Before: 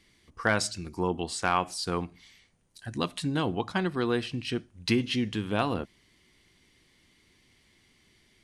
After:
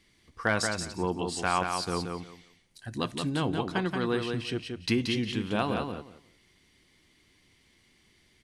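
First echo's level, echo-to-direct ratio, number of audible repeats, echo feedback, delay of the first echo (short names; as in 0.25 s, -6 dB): -5.0 dB, -5.0 dB, 3, 19%, 0.178 s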